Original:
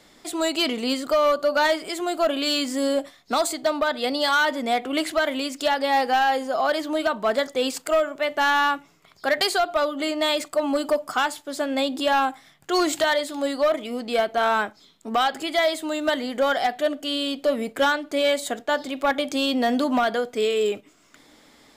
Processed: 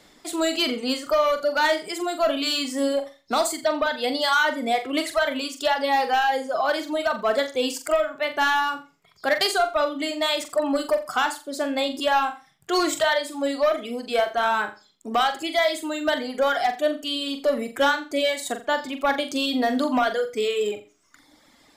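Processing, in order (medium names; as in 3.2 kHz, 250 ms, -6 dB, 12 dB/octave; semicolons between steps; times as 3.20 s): reverb removal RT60 1.3 s; flutter echo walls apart 7.4 m, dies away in 0.31 s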